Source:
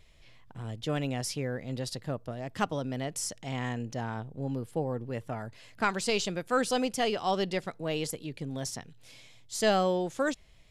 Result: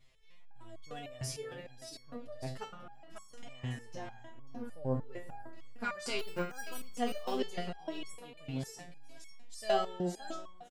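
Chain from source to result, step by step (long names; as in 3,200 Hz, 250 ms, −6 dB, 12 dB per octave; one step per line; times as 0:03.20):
0:02.71–0:03.47: compressor whose output falls as the input rises −46 dBFS, ratio −1
0:06.19–0:06.81: bad sample-rate conversion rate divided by 6×, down filtered, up hold
on a send: single-tap delay 544 ms −8 dB
on the sum: spring reverb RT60 2 s, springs 35/55 ms, chirp 35 ms, DRR 11.5 dB
step-sequenced resonator 6.6 Hz 130–1,100 Hz
level +4.5 dB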